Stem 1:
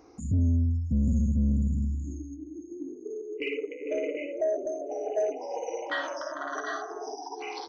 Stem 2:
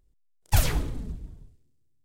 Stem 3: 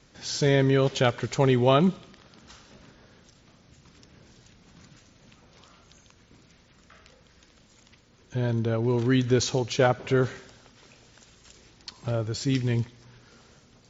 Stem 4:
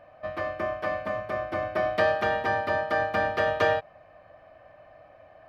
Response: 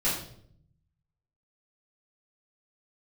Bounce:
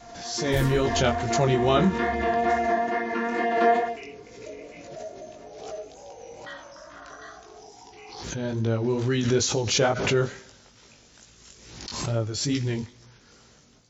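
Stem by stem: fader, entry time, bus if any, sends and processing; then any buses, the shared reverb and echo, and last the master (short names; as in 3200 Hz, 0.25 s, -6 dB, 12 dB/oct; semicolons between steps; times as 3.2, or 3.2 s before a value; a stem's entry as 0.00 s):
-16.5 dB, 0.55 s, no send, no echo send, high shelf 3400 Hz +6.5 dB
-15.0 dB, 0.00 s, no send, no echo send, dry
-6.5 dB, 0.00 s, no send, no echo send, bell 6300 Hz +5.5 dB 1 oct
-3.5 dB, 0.00 s, no send, echo send -6.5 dB, chord vocoder bare fifth, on A#3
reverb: off
echo: feedback echo 0.137 s, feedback 15%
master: AGC gain up to 8.5 dB; chorus 2.3 Hz, delay 17.5 ms, depth 3.9 ms; backwards sustainer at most 51 dB/s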